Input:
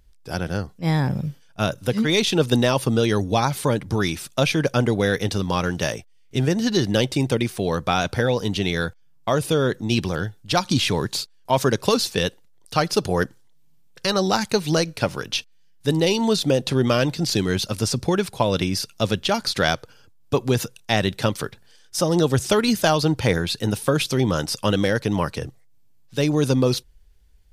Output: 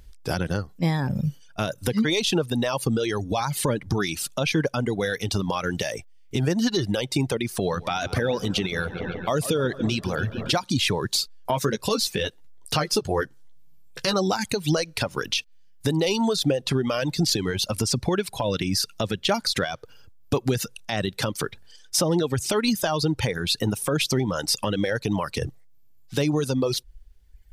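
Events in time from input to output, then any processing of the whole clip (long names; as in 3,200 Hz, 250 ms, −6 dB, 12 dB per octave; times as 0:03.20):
0:07.47–0:10.64: feedback echo with a low-pass in the loop 141 ms, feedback 76%, low-pass 4,900 Hz, level −13 dB
0:11.22–0:14.14: double-tracking delay 14 ms −5.5 dB
whole clip: downward compressor 10 to 1, threshold −26 dBFS; brickwall limiter −20 dBFS; reverb reduction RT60 1.4 s; level +8.5 dB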